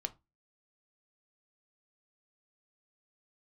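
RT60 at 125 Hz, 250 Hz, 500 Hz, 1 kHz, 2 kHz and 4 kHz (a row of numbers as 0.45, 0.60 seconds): 0.30, 0.30, 0.25, 0.20, 0.20, 0.15 seconds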